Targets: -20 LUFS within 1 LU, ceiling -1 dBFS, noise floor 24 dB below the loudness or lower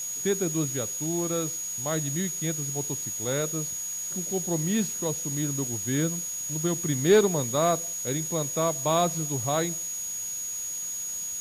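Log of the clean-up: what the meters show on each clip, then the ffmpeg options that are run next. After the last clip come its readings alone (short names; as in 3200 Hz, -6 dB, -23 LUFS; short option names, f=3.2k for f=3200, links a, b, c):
steady tone 6700 Hz; tone level -31 dBFS; noise floor -34 dBFS; noise floor target -51 dBFS; loudness -27.0 LUFS; peak -10.0 dBFS; loudness target -20.0 LUFS
-> -af "bandreject=f=6.7k:w=30"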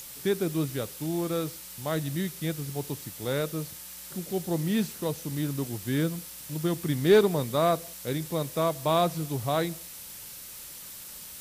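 steady tone none; noise floor -44 dBFS; noise floor target -53 dBFS
-> -af "afftdn=nr=9:nf=-44"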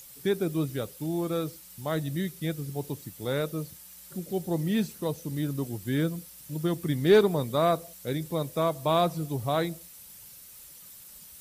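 noise floor -49 dBFS; noise floor target -53 dBFS
-> -af "afftdn=nr=6:nf=-49"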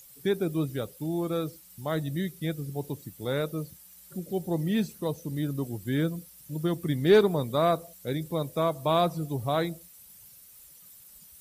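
noise floor -53 dBFS; loudness -29.0 LUFS; peak -10.5 dBFS; loudness target -20.0 LUFS
-> -af "volume=9dB"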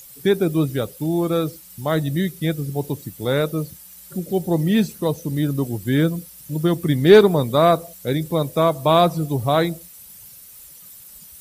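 loudness -20.0 LUFS; peak -1.5 dBFS; noise floor -44 dBFS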